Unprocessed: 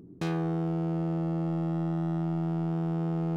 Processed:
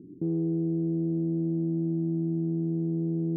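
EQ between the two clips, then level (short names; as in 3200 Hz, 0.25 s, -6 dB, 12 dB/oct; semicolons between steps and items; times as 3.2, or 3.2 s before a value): HPF 84 Hz; ladder low-pass 390 Hz, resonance 50%; +7.5 dB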